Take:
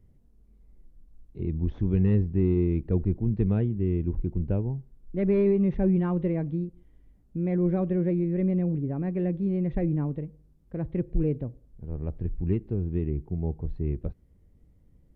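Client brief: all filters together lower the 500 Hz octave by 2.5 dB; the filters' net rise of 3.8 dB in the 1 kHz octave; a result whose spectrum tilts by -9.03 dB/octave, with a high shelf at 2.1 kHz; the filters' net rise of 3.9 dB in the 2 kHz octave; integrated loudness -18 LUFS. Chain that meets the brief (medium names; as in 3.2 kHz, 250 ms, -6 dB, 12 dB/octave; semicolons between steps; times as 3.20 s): peaking EQ 500 Hz -5 dB; peaking EQ 1 kHz +7.5 dB; peaking EQ 2 kHz +6.5 dB; treble shelf 2.1 kHz -7 dB; trim +10.5 dB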